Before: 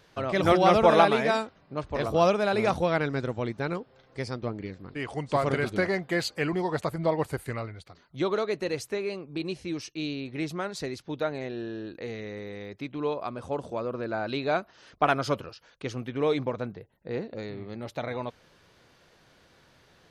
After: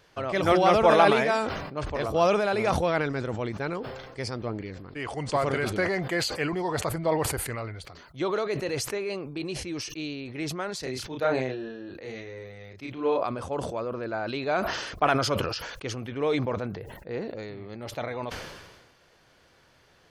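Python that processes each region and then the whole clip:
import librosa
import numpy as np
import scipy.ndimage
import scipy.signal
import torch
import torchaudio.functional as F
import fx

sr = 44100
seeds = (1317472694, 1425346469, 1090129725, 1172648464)

y = fx.chain(x, sr, fx.doubler(ms=31.0, db=-3.5),
    fx.band_widen(depth_pct=70), at=(10.8, 13.25))
y = fx.peak_eq(y, sr, hz=190.0, db=-4.0, octaves=1.5)
y = fx.notch(y, sr, hz=3800.0, q=16.0)
y = fx.sustainer(y, sr, db_per_s=42.0)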